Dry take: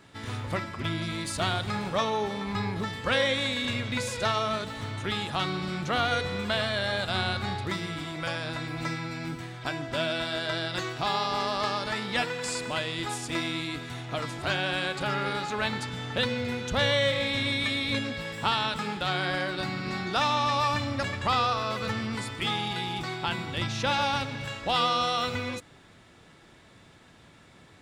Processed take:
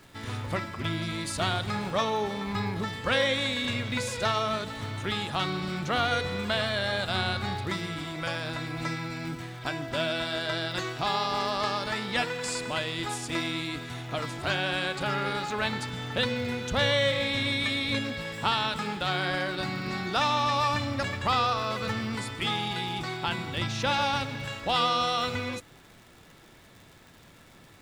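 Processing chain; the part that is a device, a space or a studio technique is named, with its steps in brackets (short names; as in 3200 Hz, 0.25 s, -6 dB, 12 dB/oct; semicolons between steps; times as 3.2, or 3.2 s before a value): vinyl LP (crackle 130/s -43 dBFS; pink noise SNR 33 dB)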